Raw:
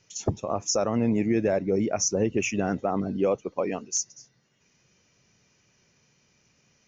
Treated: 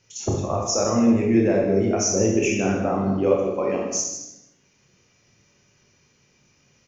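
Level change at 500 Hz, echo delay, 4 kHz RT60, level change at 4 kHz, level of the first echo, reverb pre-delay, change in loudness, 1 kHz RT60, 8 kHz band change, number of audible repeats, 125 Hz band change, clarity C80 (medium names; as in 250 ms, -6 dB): +5.0 dB, 159 ms, 0.75 s, +4.0 dB, -12.0 dB, 18 ms, +5.0 dB, 0.80 s, no reading, 1, +5.5 dB, 4.0 dB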